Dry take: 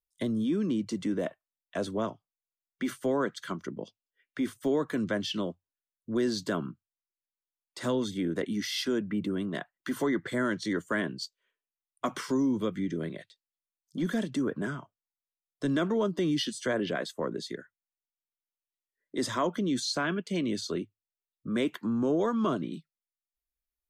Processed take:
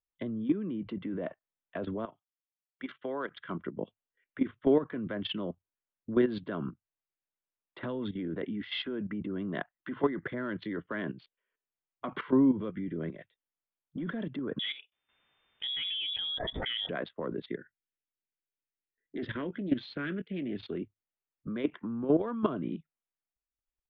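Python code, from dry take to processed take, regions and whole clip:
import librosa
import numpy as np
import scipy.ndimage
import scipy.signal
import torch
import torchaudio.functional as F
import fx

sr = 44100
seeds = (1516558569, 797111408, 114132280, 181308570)

y = fx.chain(x, sr, fx.riaa(side='recording'),
    fx.level_steps(step_db=11), at=(2.05, 3.31))
y = fx.chain(y, sr, fx.air_absorb(metres=440.0),
    fx.freq_invert(carrier_hz=3600),
    fx.pre_swell(db_per_s=74.0), at=(14.59, 16.89))
y = fx.chain(y, sr, fx.band_shelf(hz=850.0, db=-14.5, octaves=1.3),
    fx.doubler(ms=21.0, db=-13.0),
    fx.doppler_dist(depth_ms=0.17), at=(17.58, 20.75))
y = fx.wiener(y, sr, points=9)
y = scipy.signal.sosfilt(scipy.signal.butter(8, 3500.0, 'lowpass', fs=sr, output='sos'), y)
y = fx.level_steps(y, sr, step_db=13)
y = y * librosa.db_to_amplitude(4.5)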